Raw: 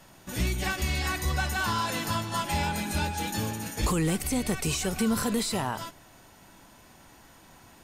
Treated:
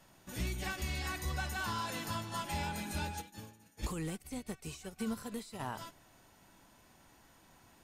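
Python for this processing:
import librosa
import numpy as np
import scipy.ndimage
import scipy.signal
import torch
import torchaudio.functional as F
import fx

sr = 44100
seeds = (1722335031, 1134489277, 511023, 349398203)

y = fx.upward_expand(x, sr, threshold_db=-36.0, expansion=2.5, at=(3.2, 5.59), fade=0.02)
y = F.gain(torch.from_numpy(y), -9.0).numpy()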